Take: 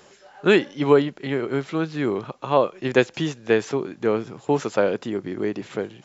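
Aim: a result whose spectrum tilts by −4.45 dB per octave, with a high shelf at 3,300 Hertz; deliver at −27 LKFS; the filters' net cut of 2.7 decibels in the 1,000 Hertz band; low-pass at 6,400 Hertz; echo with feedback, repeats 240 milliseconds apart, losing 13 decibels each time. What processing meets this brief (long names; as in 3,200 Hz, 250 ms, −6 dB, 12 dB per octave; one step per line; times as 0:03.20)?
low-pass filter 6,400 Hz
parametric band 1,000 Hz −4 dB
high-shelf EQ 3,300 Hz +5.5 dB
repeating echo 240 ms, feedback 22%, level −13 dB
level −3.5 dB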